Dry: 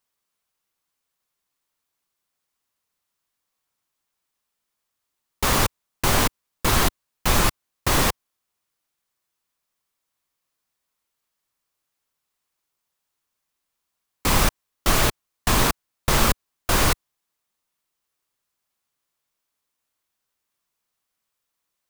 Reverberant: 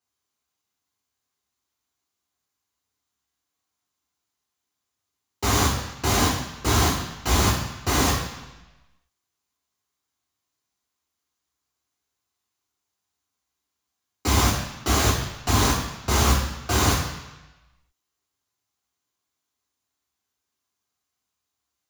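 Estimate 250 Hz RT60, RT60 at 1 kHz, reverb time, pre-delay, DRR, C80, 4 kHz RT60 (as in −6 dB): 1.0 s, 1.1 s, 1.0 s, 3 ms, −4.0 dB, 6.5 dB, 1.1 s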